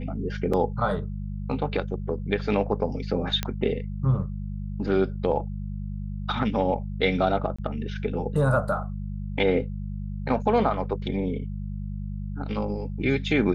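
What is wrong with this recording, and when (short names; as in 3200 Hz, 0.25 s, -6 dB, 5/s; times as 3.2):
hum 50 Hz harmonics 4 -32 dBFS
0.53–0.54 gap 5.1 ms
3.43 pop -11 dBFS
7.56–7.58 gap 25 ms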